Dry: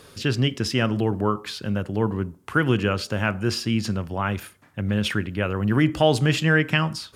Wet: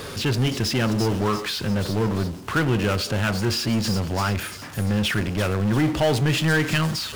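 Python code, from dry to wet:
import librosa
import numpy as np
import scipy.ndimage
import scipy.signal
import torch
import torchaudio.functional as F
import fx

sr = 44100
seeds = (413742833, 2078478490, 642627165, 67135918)

y = fx.high_shelf(x, sr, hz=8400.0, db=-8.5)
y = fx.power_curve(y, sr, exponent=0.5)
y = fx.echo_wet_highpass(y, sr, ms=343, feedback_pct=49, hz=5100.0, wet_db=-3.5)
y = F.gain(torch.from_numpy(y), -6.5).numpy()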